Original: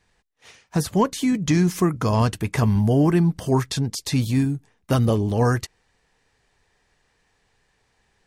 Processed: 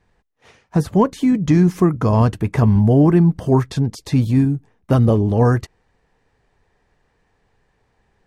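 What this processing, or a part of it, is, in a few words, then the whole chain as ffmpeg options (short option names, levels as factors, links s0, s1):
through cloth: -af "highshelf=f=2000:g=-14,volume=1.88"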